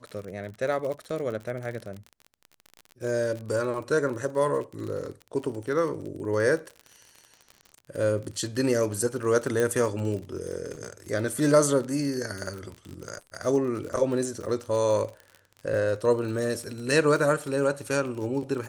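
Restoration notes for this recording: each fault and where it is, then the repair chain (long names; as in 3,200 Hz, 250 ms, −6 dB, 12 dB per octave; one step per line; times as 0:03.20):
surface crackle 43 per second −33 dBFS
0:09.60: click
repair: click removal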